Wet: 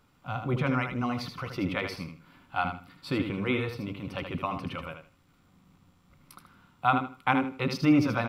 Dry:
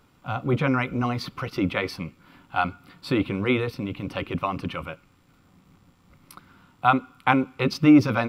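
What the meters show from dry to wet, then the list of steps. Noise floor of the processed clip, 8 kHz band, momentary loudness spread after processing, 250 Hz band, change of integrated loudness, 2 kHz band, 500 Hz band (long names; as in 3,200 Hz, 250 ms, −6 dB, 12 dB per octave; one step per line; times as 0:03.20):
−64 dBFS, can't be measured, 11 LU, −6.0 dB, −5.5 dB, −4.5 dB, −5.5 dB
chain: parametric band 370 Hz −2.5 dB 0.77 octaves
on a send: repeating echo 78 ms, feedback 22%, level −7 dB
on the sum: level −5 dB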